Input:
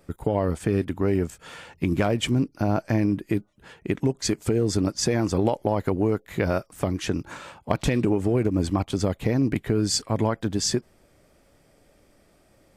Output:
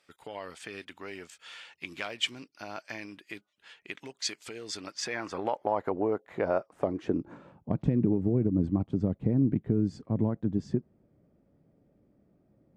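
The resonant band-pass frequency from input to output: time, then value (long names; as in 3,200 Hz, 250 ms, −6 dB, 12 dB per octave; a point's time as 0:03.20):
resonant band-pass, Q 1.1
0:04.67 3,300 Hz
0:05.99 710 Hz
0:06.70 710 Hz
0:07.54 180 Hz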